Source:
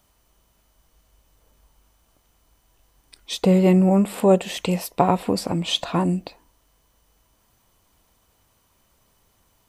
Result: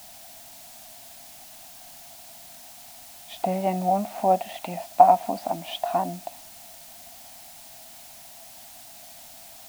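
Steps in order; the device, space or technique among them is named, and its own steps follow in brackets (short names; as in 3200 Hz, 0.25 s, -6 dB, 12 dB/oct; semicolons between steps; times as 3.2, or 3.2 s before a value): wax cylinder (BPF 380–2100 Hz; wow and flutter; white noise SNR 14 dB); EQ curve 160 Hz 0 dB, 250 Hz +3 dB, 470 Hz -18 dB, 680 Hz +13 dB, 1100 Hz -6 dB, 4300 Hz 0 dB; gain -2 dB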